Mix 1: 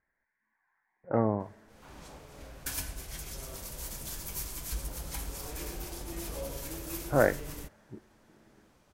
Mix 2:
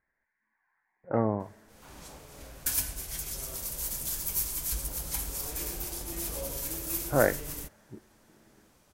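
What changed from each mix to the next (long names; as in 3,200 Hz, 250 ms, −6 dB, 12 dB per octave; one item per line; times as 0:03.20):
master: add high-shelf EQ 6,000 Hz +10.5 dB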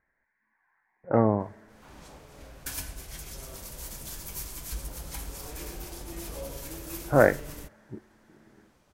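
speech +5.0 dB
master: add high-shelf EQ 6,000 Hz −10.5 dB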